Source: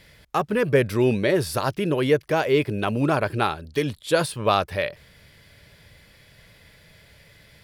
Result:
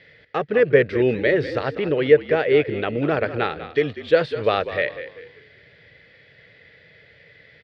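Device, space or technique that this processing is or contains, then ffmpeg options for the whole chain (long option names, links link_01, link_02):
frequency-shifting delay pedal into a guitar cabinet: -filter_complex "[0:a]asettb=1/sr,asplit=3[link_01][link_02][link_03];[link_01]atrim=end=1.604[link_04];[link_02]atrim=start=1.6:end=2.97,asetpts=PTS-STARTPTS,afade=type=in:duration=0.004:curve=qsin,afade=type=out:start_time=1.366:duration=0.004:curve=qsin,lowpass=frequency=5500:width=0.5412,lowpass=frequency=5500:width=1.3066[link_05];[link_03]atrim=start=2.966[link_06];[link_04][link_05]acrossfade=duration=0.004:curve1=hsin:curve2=qsin[link_07];[link_07][link_06]acrossfade=duration=0.004:curve1=qsin:curve2=hsin,asplit=5[link_08][link_09][link_10][link_11][link_12];[link_09]adelay=195,afreqshift=-52,volume=-12.5dB[link_13];[link_10]adelay=390,afreqshift=-104,volume=-21.4dB[link_14];[link_11]adelay=585,afreqshift=-156,volume=-30.2dB[link_15];[link_12]adelay=780,afreqshift=-208,volume=-39.1dB[link_16];[link_08][link_13][link_14][link_15][link_16]amix=inputs=5:normalize=0,highpass=110,equalizer=frequency=200:width_type=q:width=4:gain=-4,equalizer=frequency=470:width_type=q:width=4:gain=9,equalizer=frequency=1000:width_type=q:width=4:gain=-9,equalizer=frequency=1900:width_type=q:width=4:gain=9,lowpass=frequency=4000:width=0.5412,lowpass=frequency=4000:width=1.3066,volume=-1dB"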